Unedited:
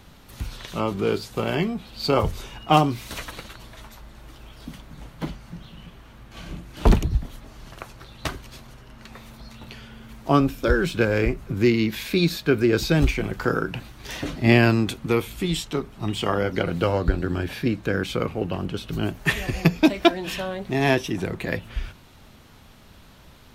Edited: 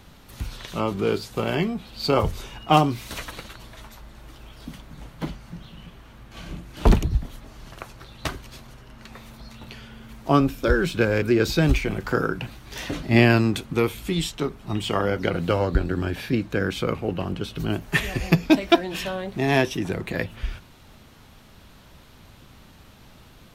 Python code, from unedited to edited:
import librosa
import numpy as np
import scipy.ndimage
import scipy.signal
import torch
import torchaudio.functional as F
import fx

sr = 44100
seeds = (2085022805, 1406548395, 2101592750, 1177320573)

y = fx.edit(x, sr, fx.cut(start_s=11.22, length_s=1.33), tone=tone)